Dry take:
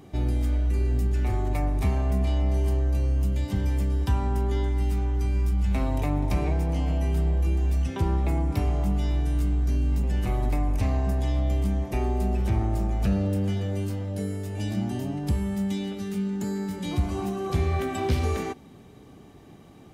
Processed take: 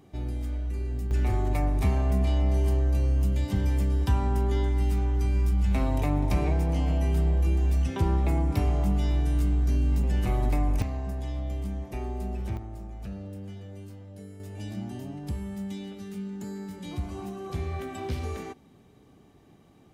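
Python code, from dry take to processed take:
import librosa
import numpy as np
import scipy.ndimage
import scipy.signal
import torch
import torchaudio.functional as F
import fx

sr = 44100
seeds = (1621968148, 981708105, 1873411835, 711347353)

y = fx.gain(x, sr, db=fx.steps((0.0, -7.0), (1.11, 0.0), (10.82, -7.5), (12.57, -14.0), (14.4, -7.5)))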